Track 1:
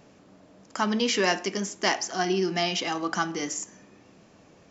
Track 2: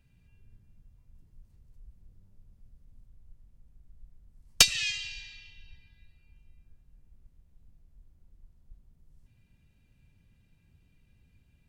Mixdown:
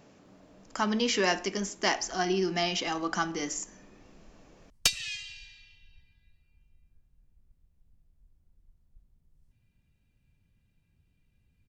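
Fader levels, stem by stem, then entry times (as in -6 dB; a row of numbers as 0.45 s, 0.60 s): -2.5 dB, -6.0 dB; 0.00 s, 0.25 s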